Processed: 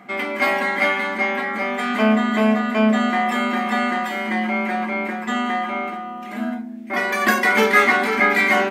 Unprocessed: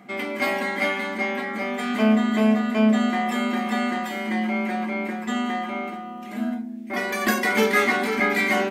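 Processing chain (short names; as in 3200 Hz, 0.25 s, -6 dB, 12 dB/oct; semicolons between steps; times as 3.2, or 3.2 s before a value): bell 1300 Hz +7 dB 2.4 oct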